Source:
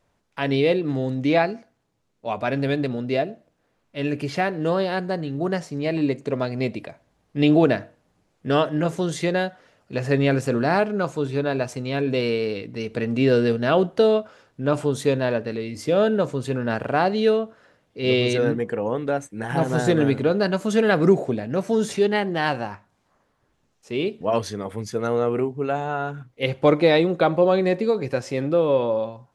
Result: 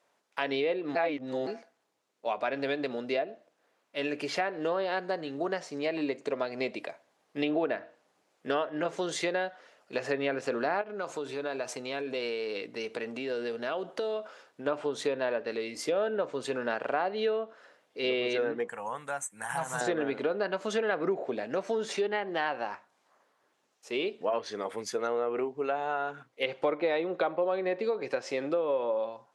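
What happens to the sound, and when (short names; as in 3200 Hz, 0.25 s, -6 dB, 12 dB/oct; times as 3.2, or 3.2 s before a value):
0.95–1.47 reverse
10.81–14.66 compressor 5:1, threshold -26 dBFS
18.68–19.81 EQ curve 160 Hz 0 dB, 360 Hz -22 dB, 960 Hz -1 dB, 5000 Hz -9 dB, 7600 Hz +11 dB
whole clip: HPF 430 Hz 12 dB/oct; treble ducked by the level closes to 2700 Hz, closed at -19.5 dBFS; compressor 3:1, threshold -28 dBFS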